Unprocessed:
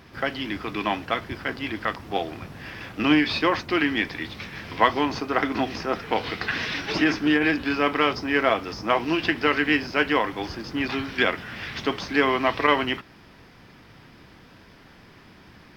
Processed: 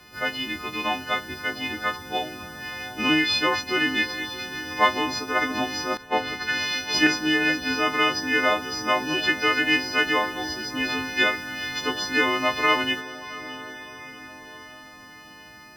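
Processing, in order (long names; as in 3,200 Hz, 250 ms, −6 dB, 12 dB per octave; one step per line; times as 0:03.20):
every partial snapped to a pitch grid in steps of 3 semitones
feedback delay with all-pass diffusion 724 ms, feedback 52%, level −15 dB
0:05.97–0:07.07: multiband upward and downward expander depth 100%
level −3 dB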